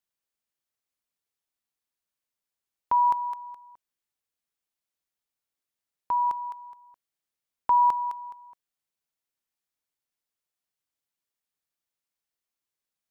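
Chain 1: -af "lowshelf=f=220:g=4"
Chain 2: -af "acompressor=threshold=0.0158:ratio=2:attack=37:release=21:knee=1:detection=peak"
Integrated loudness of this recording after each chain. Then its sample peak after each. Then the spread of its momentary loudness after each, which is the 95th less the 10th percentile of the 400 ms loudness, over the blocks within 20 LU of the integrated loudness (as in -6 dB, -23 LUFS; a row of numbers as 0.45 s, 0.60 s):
-25.0 LUFS, -32.0 LUFS; -15.0 dBFS, -16.0 dBFS; 19 LU, 16 LU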